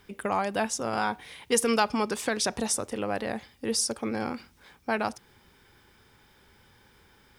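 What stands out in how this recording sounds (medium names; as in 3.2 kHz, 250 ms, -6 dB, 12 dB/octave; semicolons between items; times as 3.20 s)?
noise floor -60 dBFS; spectral tilt -2.5 dB/octave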